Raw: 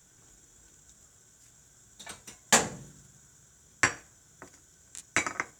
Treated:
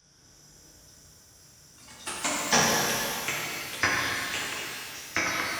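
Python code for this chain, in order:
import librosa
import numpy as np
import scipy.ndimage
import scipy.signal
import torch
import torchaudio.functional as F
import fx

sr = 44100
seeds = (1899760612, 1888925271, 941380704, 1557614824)

y = fx.freq_compress(x, sr, knee_hz=3700.0, ratio=1.5)
y = fx.echo_pitch(y, sr, ms=240, semitones=4, count=2, db_per_echo=-6.0)
y = fx.rev_shimmer(y, sr, seeds[0], rt60_s=2.6, semitones=12, shimmer_db=-8, drr_db=-4.5)
y = y * 10.0 ** (-2.0 / 20.0)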